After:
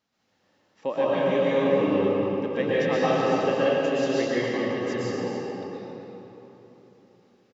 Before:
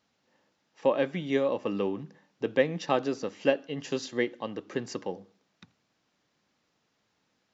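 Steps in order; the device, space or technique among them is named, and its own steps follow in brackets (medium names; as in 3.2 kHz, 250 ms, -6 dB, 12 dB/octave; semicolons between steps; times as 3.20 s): cave (delay 270 ms -8.5 dB; reverberation RT60 3.7 s, pre-delay 109 ms, DRR -10 dB); trim -5 dB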